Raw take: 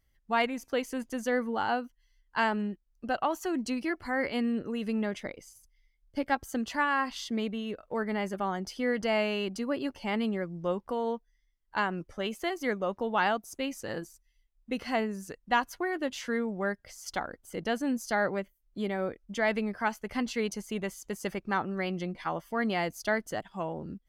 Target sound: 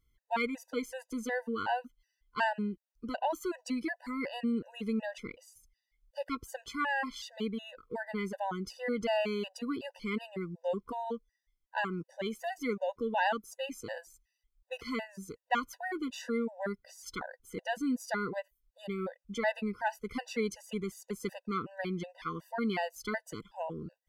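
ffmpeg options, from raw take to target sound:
ffmpeg -i in.wav -af "afftfilt=real='re*gt(sin(2*PI*2.7*pts/sr)*(1-2*mod(floor(b*sr/1024/500),2)),0)':imag='im*gt(sin(2*PI*2.7*pts/sr)*(1-2*mod(floor(b*sr/1024/500),2)),0)':win_size=1024:overlap=0.75,volume=-1dB" out.wav

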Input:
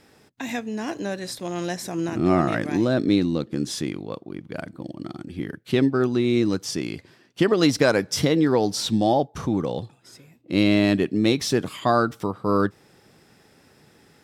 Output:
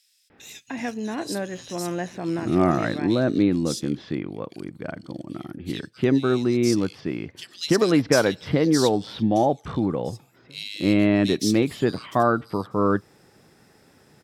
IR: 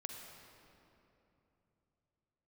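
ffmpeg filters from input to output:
-filter_complex "[0:a]acrossover=split=3000[link_01][link_02];[link_01]adelay=300[link_03];[link_03][link_02]amix=inputs=2:normalize=0"

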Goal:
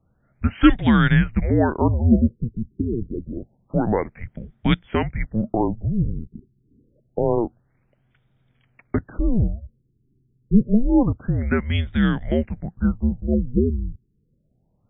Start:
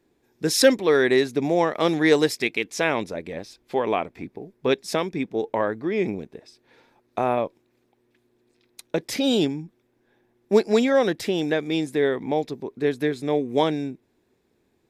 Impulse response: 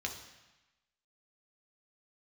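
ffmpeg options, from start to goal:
-af "afreqshift=-230,afftfilt=real='re*lt(b*sr/1024,420*pow(3800/420,0.5+0.5*sin(2*PI*0.27*pts/sr)))':imag='im*lt(b*sr/1024,420*pow(3800/420,0.5+0.5*sin(2*PI*0.27*pts/sr)))':win_size=1024:overlap=0.75,volume=3dB"

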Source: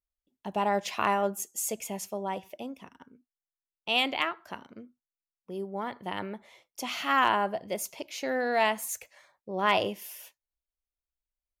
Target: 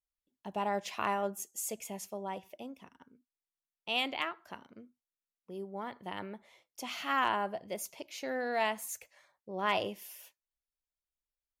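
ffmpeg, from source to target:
ffmpeg -i in.wav -af "volume=-5.5dB" -ar 44100 -c:a libmp3lame -b:a 80k out.mp3

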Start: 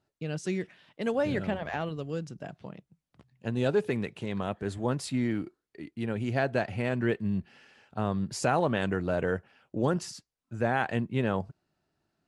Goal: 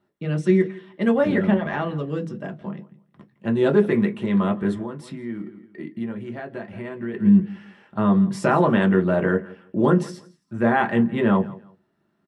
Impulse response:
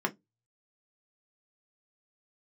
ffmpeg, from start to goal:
-filter_complex "[0:a]aecho=1:1:167|334:0.1|0.023,asettb=1/sr,asplit=3[link_01][link_02][link_03];[link_01]atrim=end=4.814[link_04];[link_02]atrim=start=4.81:end=7.14,asetpts=PTS-STARTPTS,afade=type=in:duration=0.004:curve=qsin,afade=type=out:start_time=2.326:duration=0.004:curve=qsin,acompressor=threshold=-38dB:ratio=6[link_05];[link_03]atrim=start=7.136[link_06];[link_04][link_05]acrossfade=duration=0.004:curve1=hsin:curve2=qsin[link_07];[link_07][link_06]acrossfade=duration=0.004:curve1=qsin:curve2=hsin[link_08];[1:a]atrim=start_sample=2205[link_09];[link_08][link_09]afir=irnorm=-1:irlink=0"

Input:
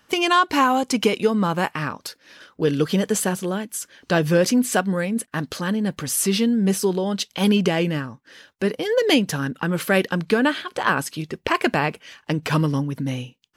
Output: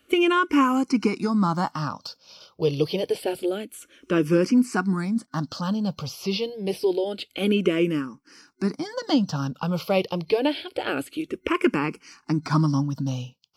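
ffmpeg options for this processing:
ffmpeg -i in.wav -filter_complex "[0:a]superequalizer=6b=1.58:11b=0.398:14b=2.24,acrossover=split=3500[link_01][link_02];[link_02]acompressor=threshold=-38dB:ratio=4:attack=1:release=60[link_03];[link_01][link_03]amix=inputs=2:normalize=0,asplit=2[link_04][link_05];[link_05]afreqshift=-0.27[link_06];[link_04][link_06]amix=inputs=2:normalize=1" out.wav

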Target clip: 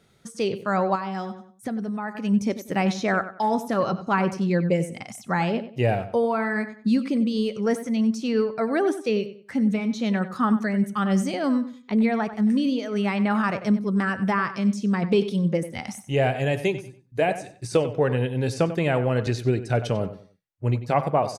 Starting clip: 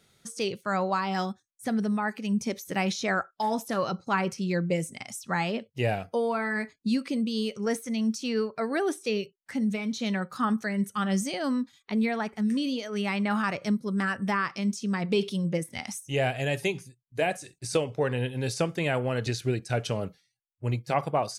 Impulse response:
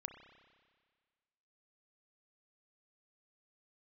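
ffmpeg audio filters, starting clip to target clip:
-filter_complex "[0:a]highshelf=frequency=2200:gain=-9,asplit=2[link_01][link_02];[link_02]adelay=94,lowpass=frequency=4000:poles=1,volume=-12.5dB,asplit=2[link_03][link_04];[link_04]adelay=94,lowpass=frequency=4000:poles=1,volume=0.29,asplit=2[link_05][link_06];[link_06]adelay=94,lowpass=frequency=4000:poles=1,volume=0.29[link_07];[link_01][link_03][link_05][link_07]amix=inputs=4:normalize=0,asettb=1/sr,asplit=3[link_08][link_09][link_10];[link_08]atrim=end=0.954[link_11];[link_09]atrim=start=0.95:end=2.15,asetpts=PTS-STARTPTS,afade=type=in:duration=0.004:curve=qsin,afade=type=out:start_time=1.196:duration=0.004:curve=qsin,acompressor=threshold=-34dB:ratio=3[link_12];[link_10]atrim=start=2.146[link_13];[link_11][link_12]acrossfade=duration=0.004:curve1=hsin:curve2=qsin[link_14];[link_14][link_13]acrossfade=duration=0.004:curve1=qsin:curve2=hsin,volume=5.5dB"

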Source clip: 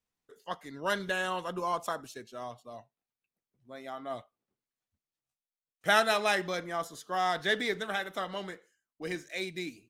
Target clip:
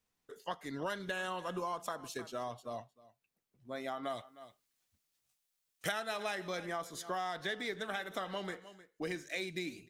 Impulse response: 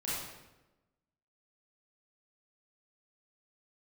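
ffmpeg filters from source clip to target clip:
-filter_complex "[0:a]asettb=1/sr,asplit=3[link_01][link_02][link_03];[link_01]atrim=end=4.034[link_04];[link_02]atrim=start=4.03:end=5.92,asetpts=PTS-STARTPTS,afade=type=in:duration=0.004:curve=qsin,afade=type=out:start_time=1.886:duration=0.004:curve=qsin,highshelf=frequency=2000:gain=9[link_05];[link_03]atrim=start=5.916[link_06];[link_04][link_05]acrossfade=duration=0.004:curve1=hsin:curve2=qsin[link_07];[link_07][link_06]acrossfade=duration=0.004:curve1=qsin:curve2=hsin,aecho=1:1:308:0.0841,acompressor=threshold=-40dB:ratio=6,volume=4.5dB"

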